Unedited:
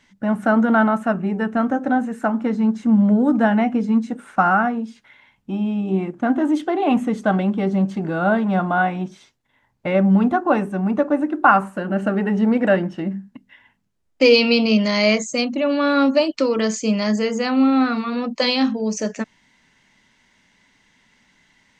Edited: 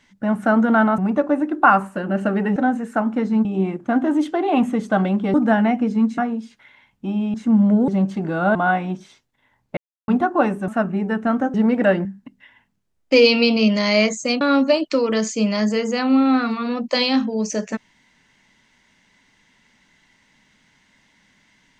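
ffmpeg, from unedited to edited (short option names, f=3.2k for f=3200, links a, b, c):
-filter_complex "[0:a]asplit=15[a][b][c][d][e][f][g][h][i][j][k][l][m][n][o];[a]atrim=end=0.982[p];[b]atrim=start=10.788:end=12.372[q];[c]atrim=start=1.838:end=2.732[r];[d]atrim=start=5.788:end=7.682[s];[e]atrim=start=3.268:end=4.112[t];[f]atrim=start=4.628:end=5.792[u];[g]atrim=start=2.728:end=3.272[v];[h]atrim=start=7.678:end=8.352[w];[i]atrim=start=8.658:end=9.88,asetpts=PTS-STARTPTS,afade=t=out:st=1.218:d=0.004:c=hsin[x];[j]atrim=start=9.88:end=10.19,asetpts=PTS-STARTPTS,volume=0[y];[k]atrim=start=10.19:end=10.792,asetpts=PTS-STARTPTS,afade=t=in:d=0.004:c=hsin[z];[l]atrim=start=0.978:end=1.842[aa];[m]atrim=start=12.368:end=12.882[ab];[n]atrim=start=13.138:end=15.502[ac];[o]atrim=start=15.878[ad];[p][q]acrossfade=d=0.004:c1=hsin:c2=hsin[ae];[ae][r]acrossfade=d=0.004:c1=hsin:c2=hsin[af];[af][s]acrossfade=d=0.004:c1=hsin:c2=hsin[ag];[ag][t]acrossfade=d=0.004:c1=hsin:c2=hsin[ah];[ah][u]acrossfade=d=0.004:c1=hsin:c2=hsin[ai];[ai][v]acrossfade=d=0.004:c1=hsin:c2=hsin[aj];[aj][w]acrossfade=d=0.004:c1=hsin:c2=hsin[ak];[x][y][z]concat=n=3:v=0:a=1[al];[ak][al]acrossfade=d=0.004:c1=hsin:c2=hsin[am];[am][aa]acrossfade=d=0.004:c1=hsin:c2=hsin[an];[an][ab]acrossfade=d=0.004:c1=hsin:c2=hsin[ao];[ao][ac]acrossfade=d=0.004:c1=hsin:c2=hsin[ap];[ap][ad]acrossfade=d=0.004:c1=hsin:c2=hsin"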